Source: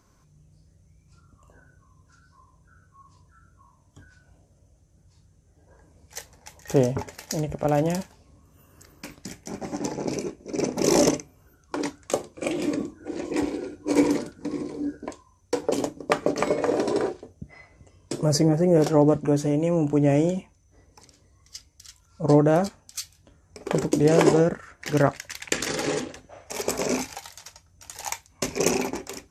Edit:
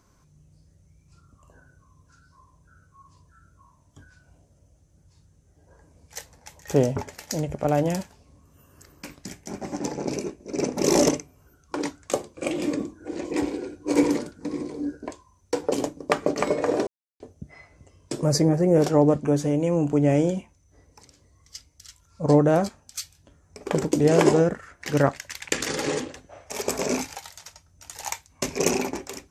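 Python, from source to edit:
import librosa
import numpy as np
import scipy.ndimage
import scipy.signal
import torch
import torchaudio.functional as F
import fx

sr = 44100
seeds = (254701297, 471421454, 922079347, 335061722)

y = fx.edit(x, sr, fx.silence(start_s=16.87, length_s=0.33), tone=tone)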